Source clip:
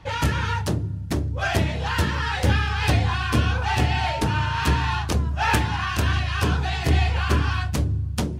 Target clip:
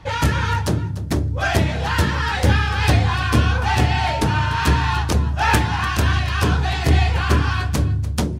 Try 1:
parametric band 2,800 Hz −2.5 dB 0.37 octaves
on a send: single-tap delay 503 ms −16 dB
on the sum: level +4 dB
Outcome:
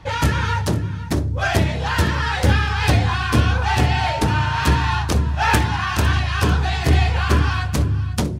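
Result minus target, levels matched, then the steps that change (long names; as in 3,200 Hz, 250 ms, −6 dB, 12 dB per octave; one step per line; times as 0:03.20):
echo 209 ms late
change: single-tap delay 294 ms −16 dB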